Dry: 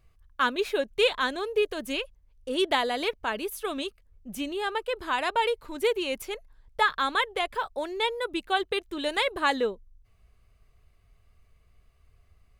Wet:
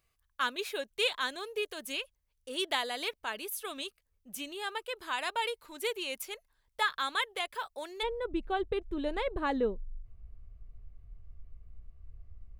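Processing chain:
spectral tilt +2.5 dB per octave, from 0:08.02 −4 dB per octave
level −7.5 dB

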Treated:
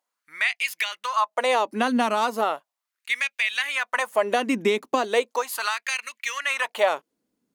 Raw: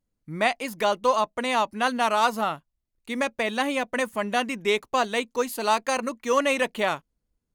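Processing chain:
downward compressor, threshold −27 dBFS, peak gain reduction 11 dB
auto-filter high-pass sine 0.37 Hz 240–2,400 Hz
level +6 dB

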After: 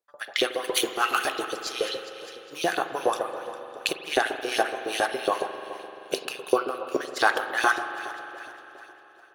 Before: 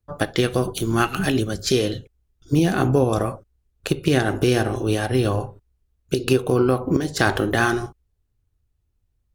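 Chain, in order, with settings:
echo machine with several playback heads 202 ms, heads first and second, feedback 50%, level −20 dB
0:00.64–0:01.45: leveller curve on the samples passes 2
auto-filter high-pass saw up 7.2 Hz 410–4,300 Hz
automatic gain control gain up to 7 dB
amplitude tremolo 2.6 Hz, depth 70%
spring reverb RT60 3.4 s, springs 43 ms, chirp 40 ms, DRR 8.5 dB
level −3.5 dB

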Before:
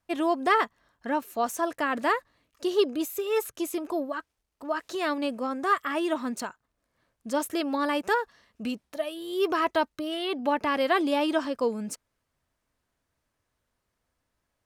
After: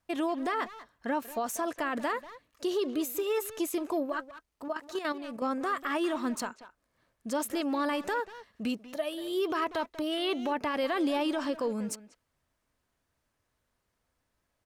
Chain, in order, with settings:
brickwall limiter −22.5 dBFS, peak gain reduction 12 dB
0:04.68–0:05.42: output level in coarse steps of 10 dB
far-end echo of a speakerphone 190 ms, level −12 dB

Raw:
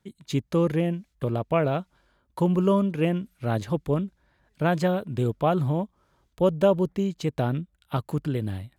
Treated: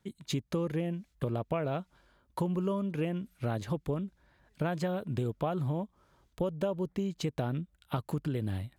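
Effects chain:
downward compressor 6 to 1, threshold −29 dBFS, peak gain reduction 13.5 dB

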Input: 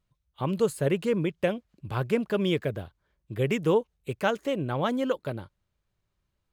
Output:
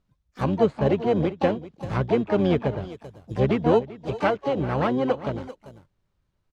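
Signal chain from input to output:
low-pass filter 6,500 Hz 12 dB per octave
slap from a distant wall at 67 metres, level −16 dB
in parallel at −5.5 dB: sample-rate reduction 3,500 Hz, jitter 0%
on the sum: pitch-shifted copies added −12 semitones −12 dB, +7 semitones −8 dB, +12 semitones −17 dB
treble cut that deepens with the level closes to 2,700 Hz, closed at −21.5 dBFS

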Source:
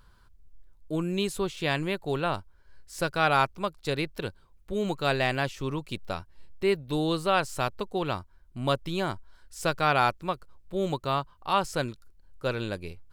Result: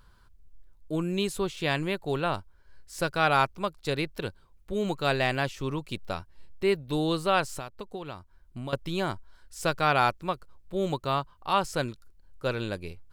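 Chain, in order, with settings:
0:07.58–0:08.73: downward compressor 12 to 1, threshold −34 dBFS, peak gain reduction 14.5 dB

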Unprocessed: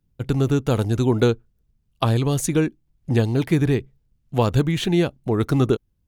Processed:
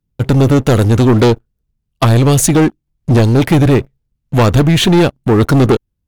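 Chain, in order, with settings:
asymmetric clip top −19 dBFS, bottom −6.5 dBFS
leveller curve on the samples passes 3
level +3.5 dB

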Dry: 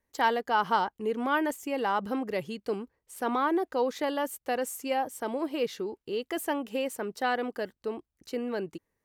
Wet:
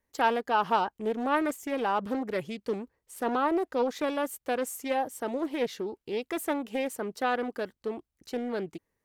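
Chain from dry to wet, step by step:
highs frequency-modulated by the lows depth 0.29 ms

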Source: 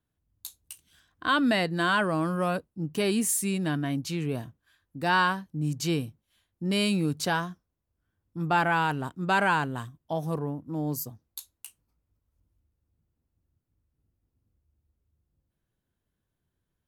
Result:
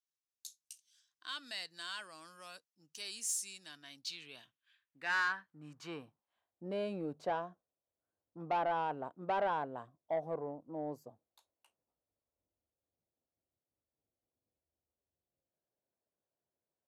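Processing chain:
band-pass filter sweep 5,800 Hz → 620 Hz, 0:03.66–0:06.68
soft clipping −27 dBFS, distortion −15 dB

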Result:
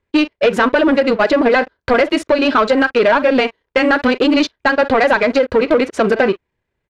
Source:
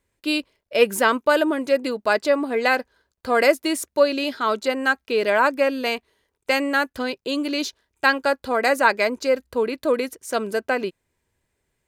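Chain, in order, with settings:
far-end echo of a speakerphone 80 ms, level −19 dB
downward compressor, threshold −24 dBFS, peak gain reduction 13 dB
time stretch by overlap-add 0.58×, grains 64 ms
leveller curve on the samples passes 3
low-pass filter 3,100 Hz 12 dB per octave
level +8 dB

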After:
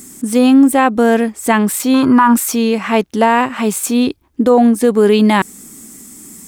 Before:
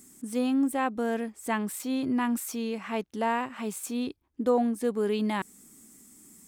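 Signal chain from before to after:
0:01.94–0:02.34: flat-topped bell 1,200 Hz +14.5 dB 1 octave
boost into a limiter +18.5 dB
level −1 dB

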